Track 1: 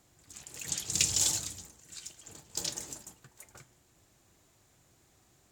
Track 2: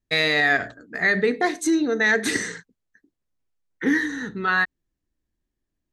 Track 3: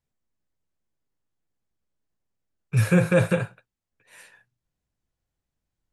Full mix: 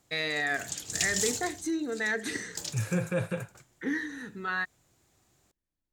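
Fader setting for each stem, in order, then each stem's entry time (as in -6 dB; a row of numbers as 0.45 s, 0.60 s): -2.5 dB, -10.5 dB, -10.5 dB; 0.00 s, 0.00 s, 0.00 s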